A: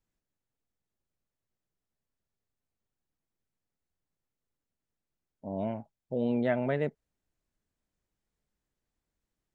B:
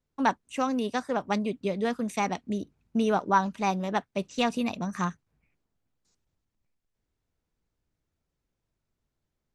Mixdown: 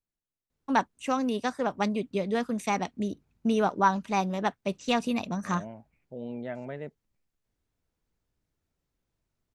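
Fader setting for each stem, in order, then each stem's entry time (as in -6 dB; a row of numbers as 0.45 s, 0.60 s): -8.5 dB, 0.0 dB; 0.00 s, 0.50 s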